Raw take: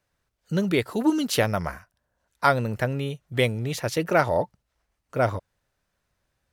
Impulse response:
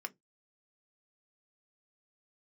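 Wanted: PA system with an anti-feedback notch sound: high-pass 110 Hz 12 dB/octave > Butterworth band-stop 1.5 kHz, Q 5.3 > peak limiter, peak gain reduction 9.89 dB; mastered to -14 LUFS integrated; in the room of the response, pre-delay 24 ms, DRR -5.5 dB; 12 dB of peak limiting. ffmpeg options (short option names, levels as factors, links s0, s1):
-filter_complex "[0:a]alimiter=limit=0.141:level=0:latency=1,asplit=2[s0][s1];[1:a]atrim=start_sample=2205,adelay=24[s2];[s1][s2]afir=irnorm=-1:irlink=0,volume=2[s3];[s0][s3]amix=inputs=2:normalize=0,highpass=110,asuperstop=centerf=1500:order=8:qfactor=5.3,volume=5.62,alimiter=limit=0.668:level=0:latency=1"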